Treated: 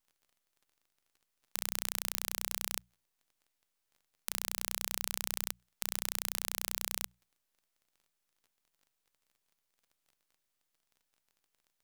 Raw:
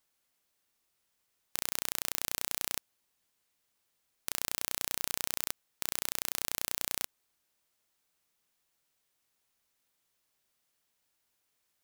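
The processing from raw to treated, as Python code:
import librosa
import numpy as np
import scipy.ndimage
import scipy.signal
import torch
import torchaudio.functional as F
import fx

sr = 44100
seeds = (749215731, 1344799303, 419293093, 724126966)

y = fx.dmg_crackle(x, sr, seeds[0], per_s=47.0, level_db=-52.0)
y = np.maximum(y, 0.0)
y = fx.hum_notches(y, sr, base_hz=60, count=3)
y = y * 10.0 ** (-1.5 / 20.0)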